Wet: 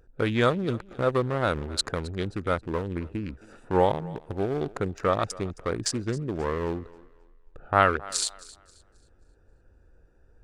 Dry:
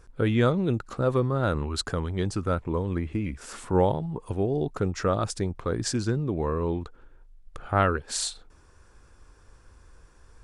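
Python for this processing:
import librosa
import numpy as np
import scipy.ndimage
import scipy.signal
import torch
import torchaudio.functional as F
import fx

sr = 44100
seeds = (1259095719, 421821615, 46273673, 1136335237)

y = fx.wiener(x, sr, points=41)
y = fx.low_shelf(y, sr, hz=440.0, db=-11.0)
y = fx.echo_thinned(y, sr, ms=267, feedback_pct=31, hz=240.0, wet_db=-20.0)
y = F.gain(torch.from_numpy(y), 6.0).numpy()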